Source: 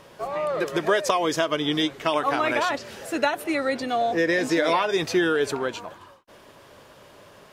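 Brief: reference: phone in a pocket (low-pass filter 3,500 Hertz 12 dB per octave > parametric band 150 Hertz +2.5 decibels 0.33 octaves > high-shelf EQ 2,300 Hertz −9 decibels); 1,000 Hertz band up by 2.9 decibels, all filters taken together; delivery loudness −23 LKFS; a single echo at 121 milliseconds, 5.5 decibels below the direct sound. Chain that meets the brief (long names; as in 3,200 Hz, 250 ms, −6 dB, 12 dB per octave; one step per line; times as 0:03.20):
low-pass filter 3,500 Hz 12 dB per octave
parametric band 150 Hz +2.5 dB 0.33 octaves
parametric band 1,000 Hz +5.5 dB
high-shelf EQ 2,300 Hz −9 dB
single-tap delay 121 ms −5.5 dB
level −0.5 dB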